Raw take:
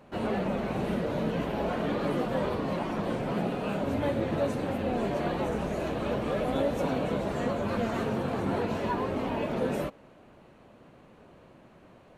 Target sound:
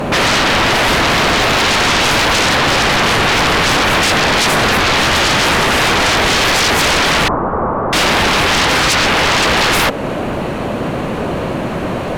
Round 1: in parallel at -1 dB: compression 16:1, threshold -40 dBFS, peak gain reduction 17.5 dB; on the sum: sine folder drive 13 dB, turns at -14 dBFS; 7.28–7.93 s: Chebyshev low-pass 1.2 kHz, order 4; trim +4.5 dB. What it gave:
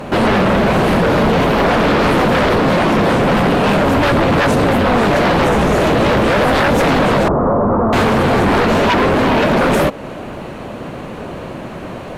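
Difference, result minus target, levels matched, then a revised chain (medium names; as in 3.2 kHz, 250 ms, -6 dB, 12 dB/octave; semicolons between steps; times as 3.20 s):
sine folder: distortion -36 dB
in parallel at -1 dB: compression 16:1, threshold -40 dBFS, peak gain reduction 17.5 dB; on the sum: sine folder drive 22 dB, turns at -14 dBFS; 7.28–7.93 s: Chebyshev low-pass 1.2 kHz, order 4; trim +4.5 dB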